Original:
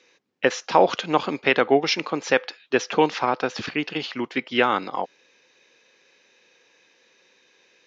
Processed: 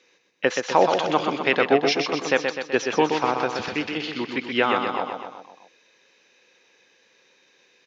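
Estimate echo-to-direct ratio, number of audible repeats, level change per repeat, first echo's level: -3.5 dB, 5, -4.5 dB, -5.5 dB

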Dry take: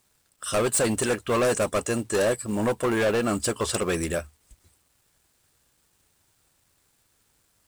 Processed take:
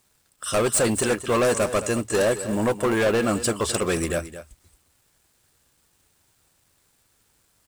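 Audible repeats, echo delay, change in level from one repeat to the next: 1, 220 ms, no regular repeats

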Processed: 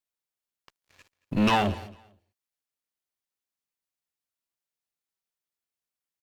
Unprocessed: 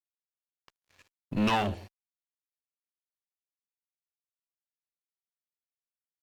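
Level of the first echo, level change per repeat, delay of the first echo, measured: -21.0 dB, -13.5 dB, 225 ms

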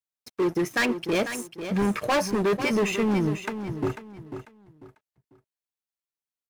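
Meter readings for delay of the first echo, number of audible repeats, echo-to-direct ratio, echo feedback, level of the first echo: 495 ms, 3, -9.5 dB, 28%, -10.0 dB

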